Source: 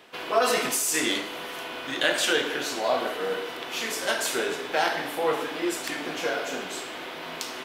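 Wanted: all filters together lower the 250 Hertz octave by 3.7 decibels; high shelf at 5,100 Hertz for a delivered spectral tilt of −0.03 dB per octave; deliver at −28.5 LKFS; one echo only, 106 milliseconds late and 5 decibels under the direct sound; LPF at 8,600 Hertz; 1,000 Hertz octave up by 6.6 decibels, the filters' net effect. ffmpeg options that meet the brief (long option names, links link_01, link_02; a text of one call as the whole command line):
ffmpeg -i in.wav -af "lowpass=8600,equalizer=frequency=250:width_type=o:gain=-6.5,equalizer=frequency=1000:width_type=o:gain=9,highshelf=frequency=5100:gain=7.5,aecho=1:1:106:0.562,volume=-6dB" out.wav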